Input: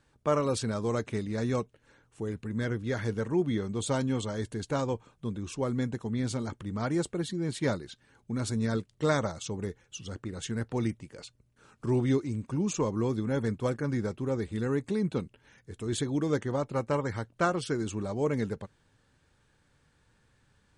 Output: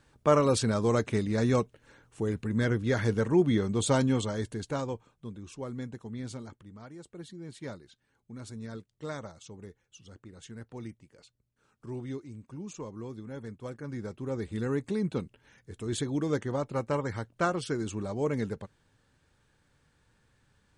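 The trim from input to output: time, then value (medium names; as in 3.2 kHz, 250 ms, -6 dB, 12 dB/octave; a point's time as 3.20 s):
4.02 s +4 dB
5.33 s -7.5 dB
6.34 s -7.5 dB
6.98 s -18.5 dB
7.20 s -11.5 dB
13.57 s -11.5 dB
14.53 s -1 dB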